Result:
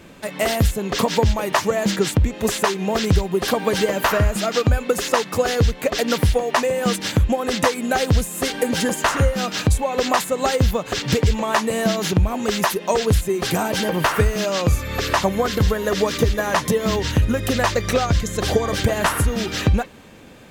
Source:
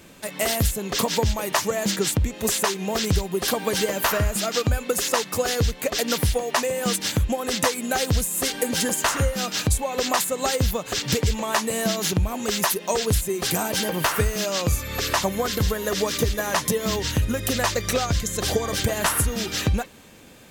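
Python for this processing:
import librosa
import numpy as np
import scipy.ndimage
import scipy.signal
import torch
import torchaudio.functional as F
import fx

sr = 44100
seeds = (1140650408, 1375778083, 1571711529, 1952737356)

y = fx.high_shelf(x, sr, hz=4500.0, db=-11.0)
y = y * 10.0 ** (5.0 / 20.0)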